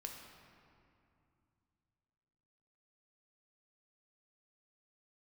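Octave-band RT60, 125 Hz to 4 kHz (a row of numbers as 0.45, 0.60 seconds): 3.6, 3.2, 2.6, 2.6, 2.2, 1.5 seconds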